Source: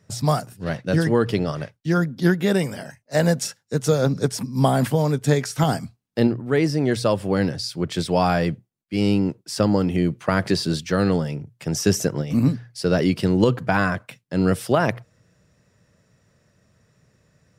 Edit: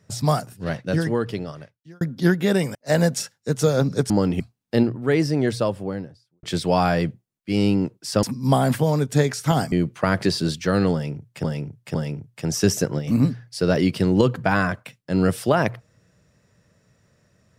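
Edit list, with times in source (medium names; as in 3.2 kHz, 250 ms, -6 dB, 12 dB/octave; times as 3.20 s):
0.65–2.01 s: fade out
2.75–3.00 s: delete
4.35–5.84 s: swap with 9.67–9.97 s
6.74–7.87 s: studio fade out
11.18–11.69 s: loop, 3 plays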